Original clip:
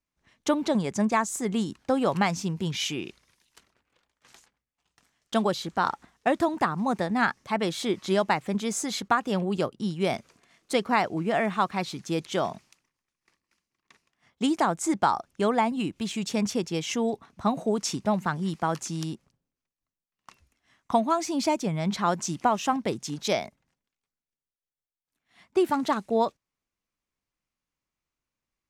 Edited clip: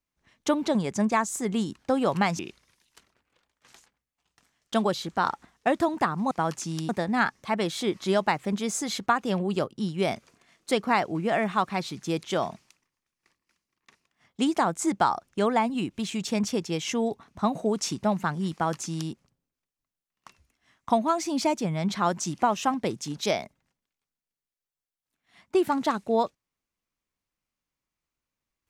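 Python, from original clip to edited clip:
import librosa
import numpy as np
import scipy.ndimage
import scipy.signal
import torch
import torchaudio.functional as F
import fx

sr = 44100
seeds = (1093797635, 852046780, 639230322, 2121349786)

y = fx.edit(x, sr, fx.cut(start_s=2.39, length_s=0.6),
    fx.duplicate(start_s=18.55, length_s=0.58, to_s=6.91), tone=tone)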